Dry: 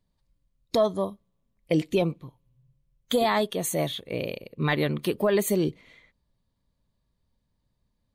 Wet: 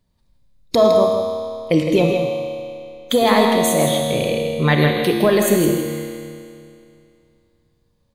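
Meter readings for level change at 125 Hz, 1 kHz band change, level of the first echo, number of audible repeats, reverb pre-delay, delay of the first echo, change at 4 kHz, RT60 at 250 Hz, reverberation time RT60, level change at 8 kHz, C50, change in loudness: +9.5 dB, +10.0 dB, -7.5 dB, 1, 28 ms, 0.161 s, +9.5 dB, 2.5 s, 2.5 s, +9.5 dB, 1.0 dB, +9.0 dB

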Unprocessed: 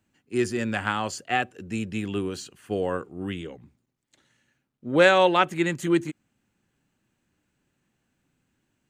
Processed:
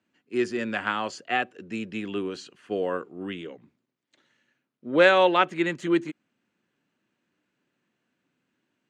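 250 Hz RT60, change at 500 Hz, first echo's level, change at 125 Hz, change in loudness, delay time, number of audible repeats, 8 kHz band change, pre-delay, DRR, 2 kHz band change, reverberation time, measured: none, -0.5 dB, none, -7.5 dB, -0.5 dB, none, none, n/a, none, none, 0.0 dB, none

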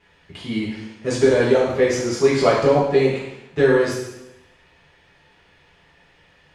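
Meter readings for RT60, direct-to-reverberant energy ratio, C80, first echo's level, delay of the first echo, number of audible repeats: 0.90 s, -8.5 dB, 4.5 dB, none, none, none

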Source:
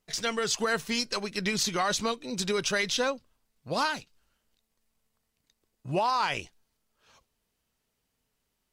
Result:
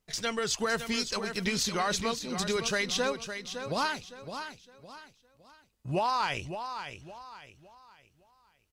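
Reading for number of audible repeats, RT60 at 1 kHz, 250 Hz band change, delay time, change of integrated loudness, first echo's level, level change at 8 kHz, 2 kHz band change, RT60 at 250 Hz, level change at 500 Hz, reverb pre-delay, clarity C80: 3, none, -0.5 dB, 0.561 s, -2.5 dB, -9.0 dB, -1.5 dB, -1.5 dB, none, -1.5 dB, none, none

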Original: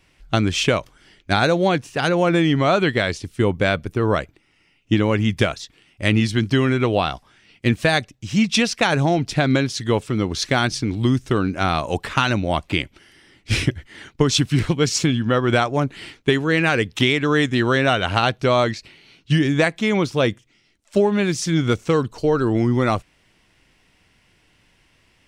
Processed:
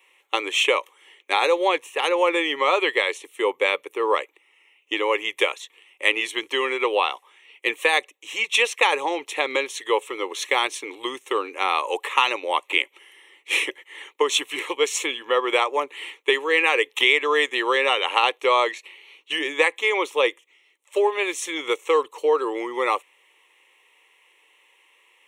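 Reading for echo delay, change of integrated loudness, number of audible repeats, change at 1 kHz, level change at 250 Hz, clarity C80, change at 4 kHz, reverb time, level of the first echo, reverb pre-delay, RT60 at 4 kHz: none, -2.5 dB, none, +0.5 dB, -14.5 dB, none, +0.5 dB, none, none, none, none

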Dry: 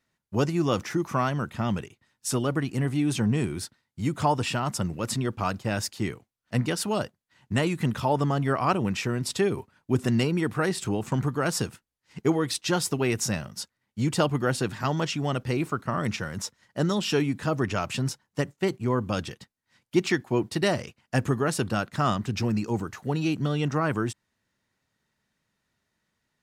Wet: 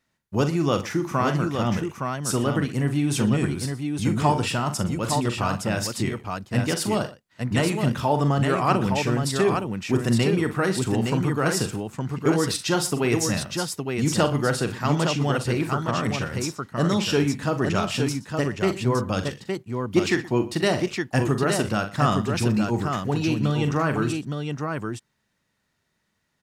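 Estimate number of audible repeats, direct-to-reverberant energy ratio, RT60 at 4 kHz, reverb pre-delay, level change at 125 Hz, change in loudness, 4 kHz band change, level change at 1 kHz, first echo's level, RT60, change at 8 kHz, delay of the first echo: 3, none, none, none, +4.0 dB, +3.5 dB, +3.5 dB, +3.5 dB, -9.5 dB, none, +3.5 dB, 42 ms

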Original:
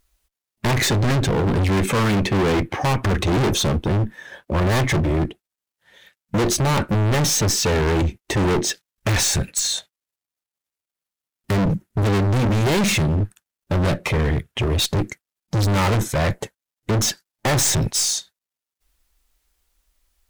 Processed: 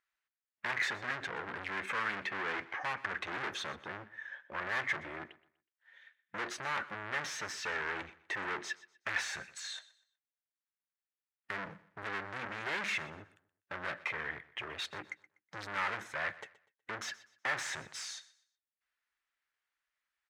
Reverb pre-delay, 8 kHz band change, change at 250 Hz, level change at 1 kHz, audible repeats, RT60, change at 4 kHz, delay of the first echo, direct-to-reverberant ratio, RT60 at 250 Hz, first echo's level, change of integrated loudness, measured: none, -24.5 dB, -28.5 dB, -13.5 dB, 2, none, -18.0 dB, 0.123 s, none, none, -19.0 dB, -17.5 dB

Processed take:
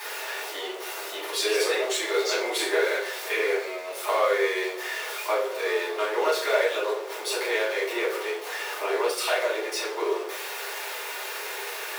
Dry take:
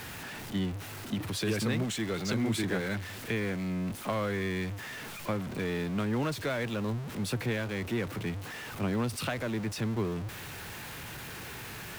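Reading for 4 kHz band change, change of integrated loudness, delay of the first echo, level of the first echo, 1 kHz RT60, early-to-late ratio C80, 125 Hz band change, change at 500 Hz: +9.5 dB, +6.5 dB, none, none, 0.50 s, 9.5 dB, under -40 dB, +10.5 dB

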